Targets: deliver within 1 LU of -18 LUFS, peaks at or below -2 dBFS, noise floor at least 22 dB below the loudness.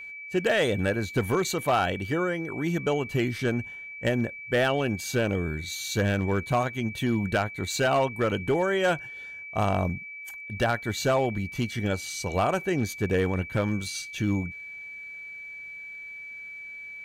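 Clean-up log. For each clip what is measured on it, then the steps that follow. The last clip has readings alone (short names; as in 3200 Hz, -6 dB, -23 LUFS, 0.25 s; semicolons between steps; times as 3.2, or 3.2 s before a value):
clipped 0.7%; flat tops at -17.0 dBFS; steady tone 2300 Hz; tone level -38 dBFS; loudness -27.0 LUFS; peak -17.0 dBFS; loudness target -18.0 LUFS
-> clip repair -17 dBFS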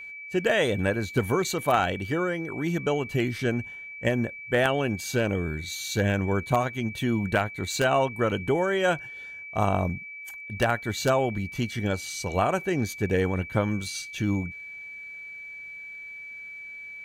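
clipped 0.0%; steady tone 2300 Hz; tone level -38 dBFS
-> notch 2300 Hz, Q 30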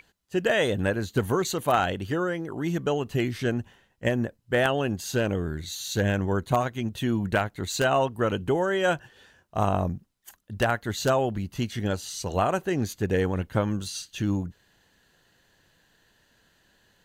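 steady tone none; loudness -27.0 LUFS; peak -8.0 dBFS; loudness target -18.0 LUFS
-> gain +9 dB; limiter -2 dBFS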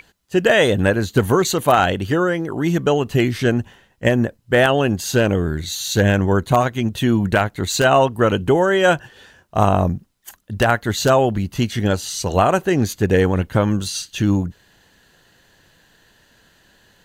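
loudness -18.0 LUFS; peak -2.0 dBFS; noise floor -58 dBFS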